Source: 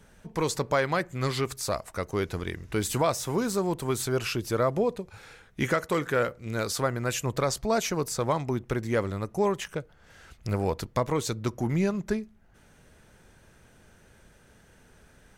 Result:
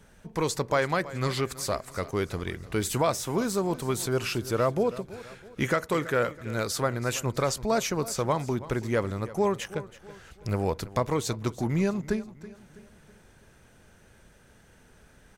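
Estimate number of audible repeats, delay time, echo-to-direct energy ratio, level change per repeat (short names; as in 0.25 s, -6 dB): 3, 0.327 s, -16.0 dB, -7.0 dB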